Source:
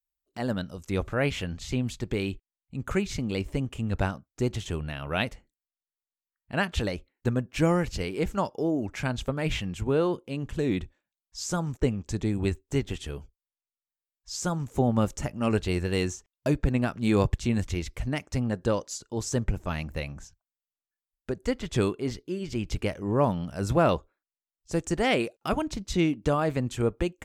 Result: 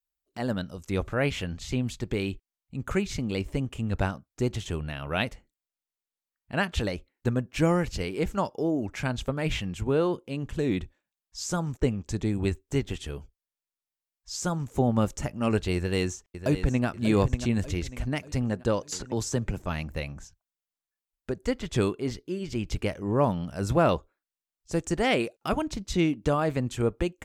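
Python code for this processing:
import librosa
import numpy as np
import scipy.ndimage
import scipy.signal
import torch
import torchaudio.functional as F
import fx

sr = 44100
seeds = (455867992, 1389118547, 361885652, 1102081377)

y = fx.echo_throw(x, sr, start_s=15.75, length_s=1.11, ms=590, feedback_pct=45, wet_db=-10.5)
y = fx.band_squash(y, sr, depth_pct=70, at=(18.92, 19.62))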